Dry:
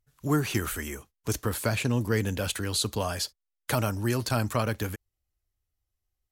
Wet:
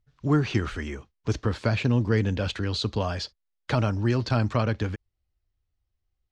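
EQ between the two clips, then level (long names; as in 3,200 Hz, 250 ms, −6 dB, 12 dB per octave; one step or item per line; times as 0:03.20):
low-pass filter 5,100 Hz 24 dB per octave
low-shelf EQ 370 Hz +5 dB
0.0 dB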